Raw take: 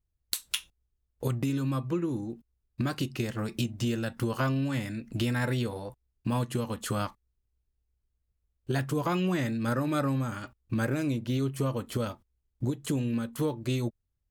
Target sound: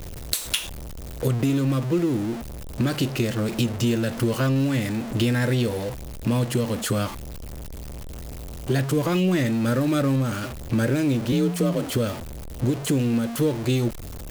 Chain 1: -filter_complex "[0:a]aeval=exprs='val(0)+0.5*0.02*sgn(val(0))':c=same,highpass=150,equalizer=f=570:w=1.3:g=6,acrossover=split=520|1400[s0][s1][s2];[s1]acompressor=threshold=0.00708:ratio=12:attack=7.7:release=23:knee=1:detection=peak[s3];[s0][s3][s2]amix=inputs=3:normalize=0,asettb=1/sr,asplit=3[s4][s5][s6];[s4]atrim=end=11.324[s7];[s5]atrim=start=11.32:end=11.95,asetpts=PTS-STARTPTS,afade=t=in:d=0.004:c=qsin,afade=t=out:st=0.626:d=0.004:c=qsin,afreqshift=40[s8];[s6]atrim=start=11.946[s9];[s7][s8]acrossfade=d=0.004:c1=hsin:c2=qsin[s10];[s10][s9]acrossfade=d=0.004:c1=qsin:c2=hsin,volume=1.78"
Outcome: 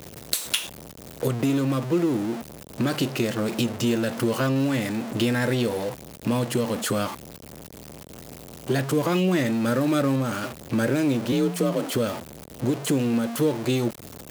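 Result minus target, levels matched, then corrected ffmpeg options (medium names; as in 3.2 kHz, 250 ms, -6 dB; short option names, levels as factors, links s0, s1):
compression: peak gain reduction -5.5 dB; 125 Hz band -3.5 dB
-filter_complex "[0:a]aeval=exprs='val(0)+0.5*0.02*sgn(val(0))':c=same,equalizer=f=570:w=1.3:g=6,acrossover=split=520|1400[s0][s1][s2];[s1]acompressor=threshold=0.00355:ratio=12:attack=7.7:release=23:knee=1:detection=peak[s3];[s0][s3][s2]amix=inputs=3:normalize=0,asettb=1/sr,asplit=3[s4][s5][s6];[s4]atrim=end=11.324[s7];[s5]atrim=start=11.32:end=11.95,asetpts=PTS-STARTPTS,afade=t=in:d=0.004:c=qsin,afade=t=out:st=0.626:d=0.004:c=qsin,afreqshift=40[s8];[s6]atrim=start=11.946[s9];[s7][s8]acrossfade=d=0.004:c1=hsin:c2=qsin[s10];[s10][s9]acrossfade=d=0.004:c1=qsin:c2=hsin,volume=1.78"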